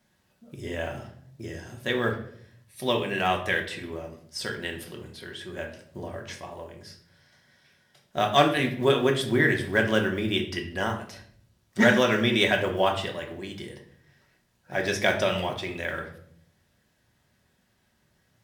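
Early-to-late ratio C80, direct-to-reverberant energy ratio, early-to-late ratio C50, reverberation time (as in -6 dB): 13.0 dB, 1.5 dB, 9.0 dB, 0.65 s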